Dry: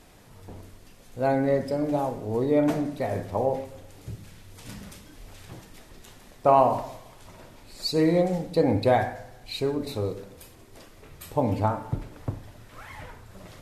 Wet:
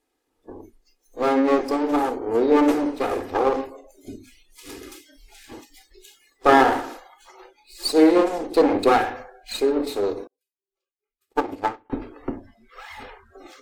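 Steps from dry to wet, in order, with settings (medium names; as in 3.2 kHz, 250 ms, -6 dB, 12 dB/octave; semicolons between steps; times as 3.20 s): comb filter that takes the minimum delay 2.4 ms; hum notches 50/100/150/200/250/300 Hz; spectral noise reduction 25 dB; resonant low shelf 200 Hz -8.5 dB, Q 3; 10.27–11.90 s: upward expansion 2.5:1, over -48 dBFS; trim +5 dB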